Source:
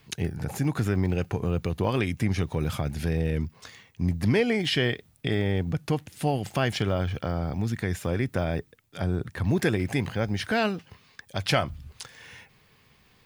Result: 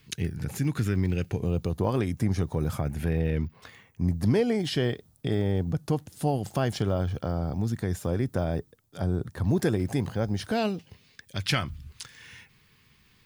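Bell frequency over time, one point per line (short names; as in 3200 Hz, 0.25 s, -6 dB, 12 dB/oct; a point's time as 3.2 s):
bell -11 dB 1.2 oct
1.14 s 740 Hz
1.79 s 2600 Hz
2.66 s 2600 Hz
3.41 s 9700 Hz
4.23 s 2300 Hz
10.35 s 2300 Hz
11.54 s 630 Hz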